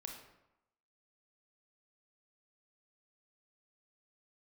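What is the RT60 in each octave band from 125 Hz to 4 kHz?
0.80 s, 0.85 s, 0.85 s, 0.95 s, 0.75 s, 0.55 s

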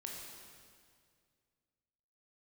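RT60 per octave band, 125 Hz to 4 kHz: 2.6 s, 2.3 s, 2.2 s, 2.0 s, 1.9 s, 1.9 s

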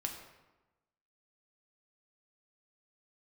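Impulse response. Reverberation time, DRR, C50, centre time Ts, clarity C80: 1.1 s, 2.0 dB, 6.5 dB, 31 ms, 8.0 dB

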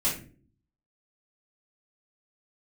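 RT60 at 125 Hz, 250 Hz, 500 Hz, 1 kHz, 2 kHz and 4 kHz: 0.80 s, 0.75 s, 0.55 s, 0.30 s, 0.35 s, 0.25 s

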